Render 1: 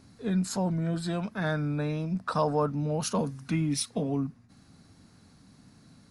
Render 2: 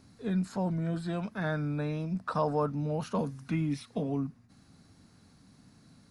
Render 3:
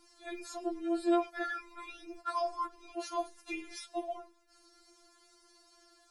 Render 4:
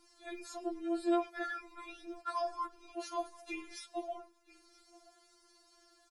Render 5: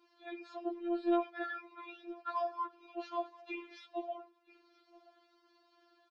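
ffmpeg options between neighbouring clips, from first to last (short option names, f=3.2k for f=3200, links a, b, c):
-filter_complex "[0:a]acrossover=split=2900[a][b];[b]acompressor=threshold=-49dB:ratio=4:attack=1:release=60[c];[a][c]amix=inputs=2:normalize=0,volume=-2.5dB"
-af "equalizer=f=6.8k:w=0.52:g=3.5,afftfilt=real='re*4*eq(mod(b,16),0)':imag='im*4*eq(mod(b,16),0)':win_size=2048:overlap=0.75,volume=2.5dB"
-af "aecho=1:1:978:0.0794,volume=-2.5dB"
-af "highpass=260,equalizer=f=560:t=q:w=4:g=-5,equalizer=f=1.3k:t=q:w=4:g=-3,equalizer=f=2k:t=q:w=4:g=-6,lowpass=f=3.5k:w=0.5412,lowpass=f=3.5k:w=1.3066,afftfilt=real='hypot(re,im)*cos(PI*b)':imag='0':win_size=512:overlap=0.75,volume=2dB"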